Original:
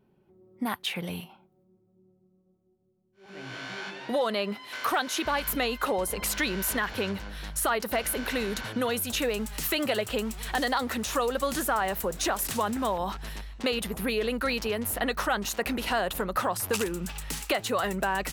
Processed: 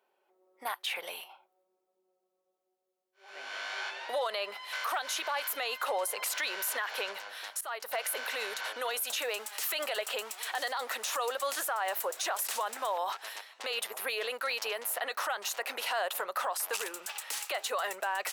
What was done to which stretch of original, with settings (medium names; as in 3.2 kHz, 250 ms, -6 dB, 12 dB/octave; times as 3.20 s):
7.61–8.16 s: fade in, from -20.5 dB
whole clip: high-pass 560 Hz 24 dB/octave; peak limiter -24.5 dBFS; trim +1 dB